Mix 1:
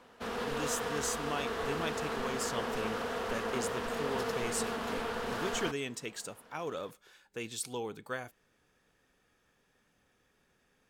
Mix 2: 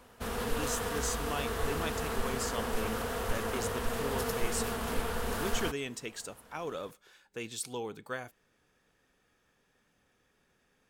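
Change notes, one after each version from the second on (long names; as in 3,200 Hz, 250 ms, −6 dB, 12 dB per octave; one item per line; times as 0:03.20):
background: remove three-way crossover with the lows and the highs turned down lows −14 dB, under 160 Hz, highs −14 dB, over 6,100 Hz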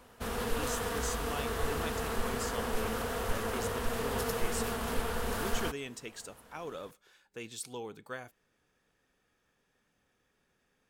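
speech −3.5 dB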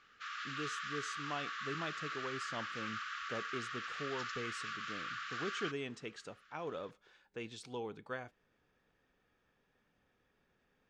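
background: add linear-phase brick-wall band-pass 1,100–7,600 Hz
master: add high-frequency loss of the air 140 metres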